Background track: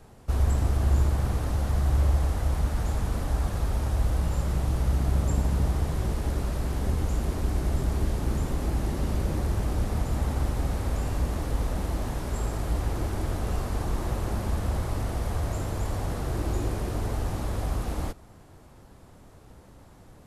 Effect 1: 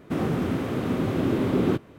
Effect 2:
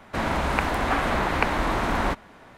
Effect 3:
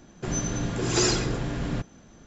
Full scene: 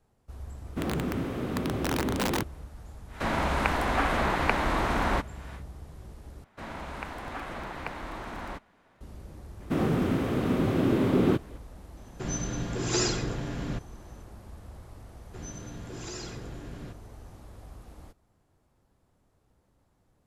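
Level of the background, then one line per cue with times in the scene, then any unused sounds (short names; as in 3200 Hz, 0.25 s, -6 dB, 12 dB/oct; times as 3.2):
background track -18 dB
0.66 add 1 -5 dB + wrapped overs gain 16.5 dB
3.07 add 2 -2.5 dB, fades 0.10 s + mismatched tape noise reduction encoder only
6.44 replace with 2 -14 dB + crackling interface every 0.12 s, samples 256, repeat, from 0.83
9.6 add 1 -0.5 dB
11.97 add 3 -4 dB
15.11 add 3 -13.5 dB + limiter -15.5 dBFS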